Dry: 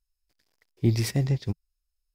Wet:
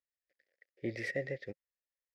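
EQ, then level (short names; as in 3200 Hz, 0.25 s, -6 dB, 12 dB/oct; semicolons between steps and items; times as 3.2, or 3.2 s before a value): double band-pass 1000 Hz, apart 1.8 oct; +5.5 dB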